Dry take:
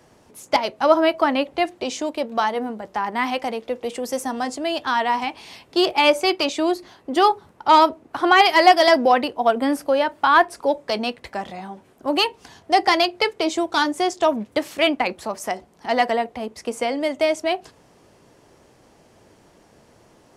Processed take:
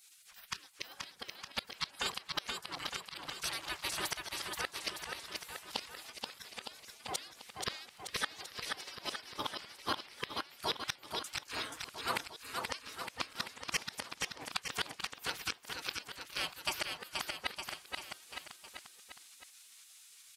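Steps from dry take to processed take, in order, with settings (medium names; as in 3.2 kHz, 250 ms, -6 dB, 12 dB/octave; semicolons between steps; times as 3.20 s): 3.29–3.93 s: peaking EQ 630 Hz -8.5 dB 1.5 oct; spectral gate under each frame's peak -25 dB weak; bass shelf 130 Hz -7 dB; inverted gate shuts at -29 dBFS, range -27 dB; on a send: bouncing-ball echo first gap 480 ms, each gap 0.9×, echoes 5; on the sum: trim +9.5 dB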